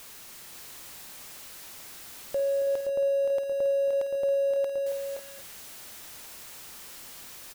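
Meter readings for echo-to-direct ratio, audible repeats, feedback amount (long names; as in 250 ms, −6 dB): −3.0 dB, 4, repeats not evenly spaced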